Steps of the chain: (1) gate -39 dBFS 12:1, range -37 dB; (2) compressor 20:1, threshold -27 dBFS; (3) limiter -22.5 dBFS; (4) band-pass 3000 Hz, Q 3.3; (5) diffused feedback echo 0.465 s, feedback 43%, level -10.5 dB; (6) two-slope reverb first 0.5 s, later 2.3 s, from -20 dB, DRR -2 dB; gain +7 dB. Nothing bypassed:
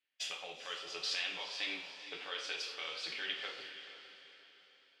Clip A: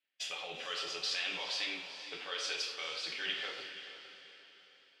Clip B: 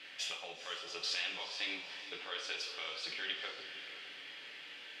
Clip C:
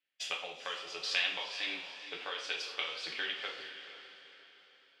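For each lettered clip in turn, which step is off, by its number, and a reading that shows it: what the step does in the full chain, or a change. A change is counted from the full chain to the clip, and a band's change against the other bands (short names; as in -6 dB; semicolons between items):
2, mean gain reduction 7.0 dB; 1, momentary loudness spread change -5 LU; 3, crest factor change +3.0 dB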